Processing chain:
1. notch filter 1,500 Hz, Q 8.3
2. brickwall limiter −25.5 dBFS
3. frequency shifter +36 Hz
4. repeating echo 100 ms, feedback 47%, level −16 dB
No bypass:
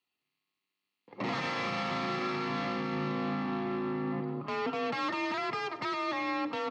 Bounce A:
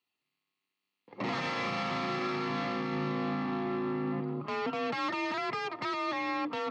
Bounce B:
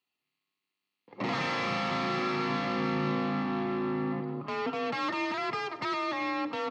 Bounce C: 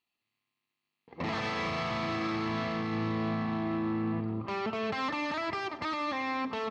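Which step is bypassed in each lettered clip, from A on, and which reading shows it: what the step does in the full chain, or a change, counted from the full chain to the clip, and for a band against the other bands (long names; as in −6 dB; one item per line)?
4, echo-to-direct ratio −15.0 dB to none audible
2, average gain reduction 1.5 dB
3, 125 Hz band +3.5 dB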